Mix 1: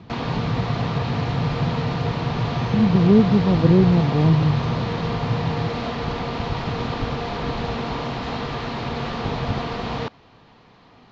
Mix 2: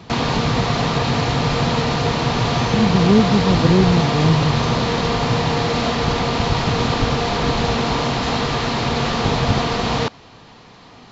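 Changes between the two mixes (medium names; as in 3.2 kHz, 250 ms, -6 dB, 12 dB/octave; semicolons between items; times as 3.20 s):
background +6.5 dB; master: remove distance through air 150 m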